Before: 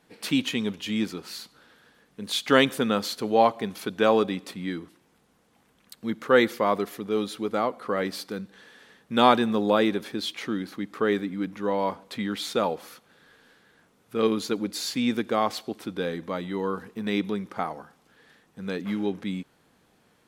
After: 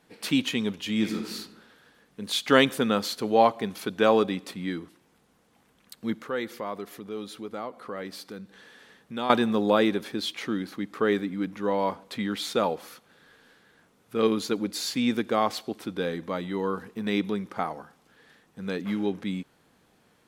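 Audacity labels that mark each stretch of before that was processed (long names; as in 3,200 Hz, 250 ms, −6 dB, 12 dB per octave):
0.930000	1.340000	thrown reverb, RT60 0.93 s, DRR 3 dB
6.180000	9.300000	downward compressor 1.5 to 1, threshold −47 dBFS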